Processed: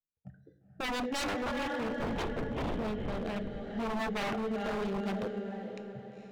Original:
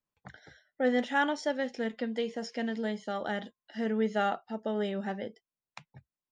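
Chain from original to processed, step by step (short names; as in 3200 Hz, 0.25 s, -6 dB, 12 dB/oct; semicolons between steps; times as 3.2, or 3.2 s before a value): Wiener smoothing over 41 samples; spectral noise reduction 14 dB; in parallel at -2 dB: limiter -27.5 dBFS, peak gain reduction 11 dB; 1.9–2.79 on the sum: LPC vocoder at 8 kHz whisper; rotary speaker horn 0.7 Hz; diffused feedback echo 0.467 s, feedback 47%, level -7 dB; on a send at -11 dB: reverb RT60 0.70 s, pre-delay 6 ms; on the sum: wavefolder -28.5 dBFS; 3.93–5.23 three-band squash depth 40%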